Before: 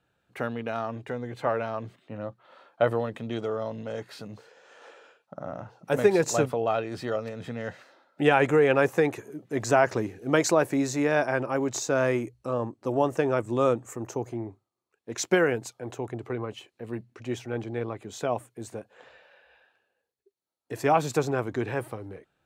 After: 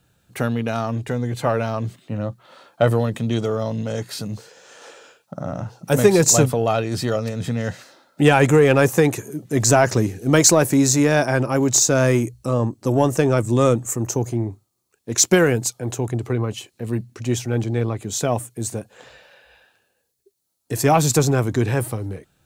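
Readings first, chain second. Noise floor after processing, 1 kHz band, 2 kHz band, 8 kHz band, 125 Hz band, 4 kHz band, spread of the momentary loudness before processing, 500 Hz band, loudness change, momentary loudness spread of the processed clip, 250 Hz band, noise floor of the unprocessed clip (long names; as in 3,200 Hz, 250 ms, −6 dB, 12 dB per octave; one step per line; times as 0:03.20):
−70 dBFS, +5.0 dB, +5.5 dB, +17.0 dB, +14.0 dB, +12.0 dB, 16 LU, +6.0 dB, +8.0 dB, 15 LU, +9.5 dB, −79 dBFS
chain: bass and treble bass +10 dB, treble +14 dB
in parallel at −5.5 dB: soft clipping −16 dBFS, distortion −13 dB
on the sum: level +2 dB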